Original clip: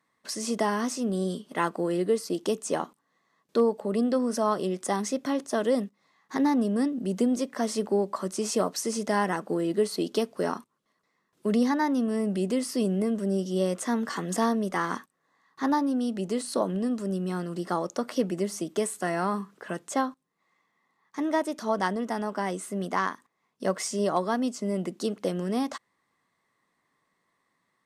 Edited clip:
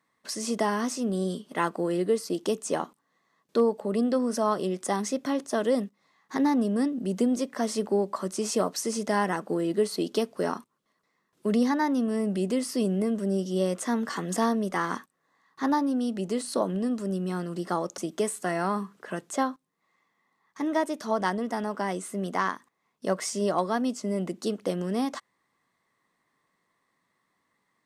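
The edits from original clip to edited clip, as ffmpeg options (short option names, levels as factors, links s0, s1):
-filter_complex "[0:a]asplit=2[s0][s1];[s0]atrim=end=17.982[s2];[s1]atrim=start=18.558[s3];[s2][s3]acrossfade=d=0.004:c1=hsin:c2=hsin"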